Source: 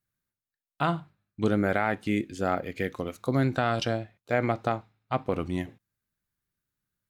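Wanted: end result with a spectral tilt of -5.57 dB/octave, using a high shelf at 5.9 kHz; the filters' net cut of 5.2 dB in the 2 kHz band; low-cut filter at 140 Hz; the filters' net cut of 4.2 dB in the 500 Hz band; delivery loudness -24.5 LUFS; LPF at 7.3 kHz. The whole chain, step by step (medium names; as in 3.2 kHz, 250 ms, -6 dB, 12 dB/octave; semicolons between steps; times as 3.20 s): high-pass 140 Hz; low-pass 7.3 kHz; peaking EQ 500 Hz -5 dB; peaking EQ 2 kHz -6.5 dB; treble shelf 5.9 kHz -3 dB; trim +7.5 dB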